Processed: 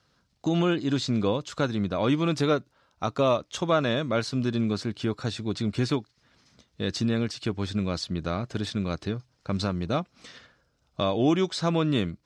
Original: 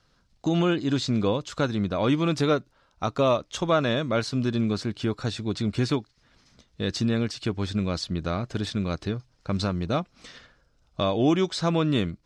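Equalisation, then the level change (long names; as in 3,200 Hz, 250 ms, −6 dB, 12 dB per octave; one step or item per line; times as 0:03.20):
high-pass filter 72 Hz
−1.0 dB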